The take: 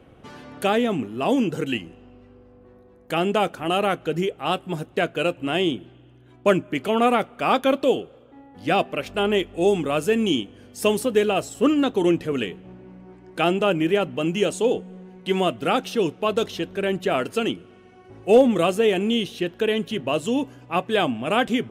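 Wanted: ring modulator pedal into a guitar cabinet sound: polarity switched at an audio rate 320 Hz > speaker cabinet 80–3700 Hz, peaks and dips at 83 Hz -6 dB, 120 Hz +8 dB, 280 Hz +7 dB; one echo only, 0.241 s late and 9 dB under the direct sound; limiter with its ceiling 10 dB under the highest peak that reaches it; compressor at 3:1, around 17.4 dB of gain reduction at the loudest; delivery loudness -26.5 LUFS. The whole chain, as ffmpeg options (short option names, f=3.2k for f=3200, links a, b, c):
-af "acompressor=threshold=-35dB:ratio=3,alimiter=level_in=5dB:limit=-24dB:level=0:latency=1,volume=-5dB,aecho=1:1:241:0.355,aeval=exprs='val(0)*sgn(sin(2*PI*320*n/s))':c=same,highpass=80,equalizer=f=83:t=q:w=4:g=-6,equalizer=f=120:t=q:w=4:g=8,equalizer=f=280:t=q:w=4:g=7,lowpass=f=3.7k:w=0.5412,lowpass=f=3.7k:w=1.3066,volume=12dB"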